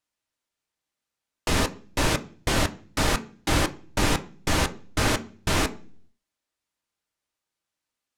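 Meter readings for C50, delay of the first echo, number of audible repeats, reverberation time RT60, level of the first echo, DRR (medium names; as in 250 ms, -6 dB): 18.0 dB, no echo, no echo, 0.40 s, no echo, 7.0 dB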